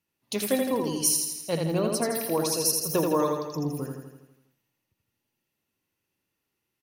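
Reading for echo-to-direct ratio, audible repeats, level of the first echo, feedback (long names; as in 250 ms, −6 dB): −2.0 dB, 7, −4.0 dB, 58%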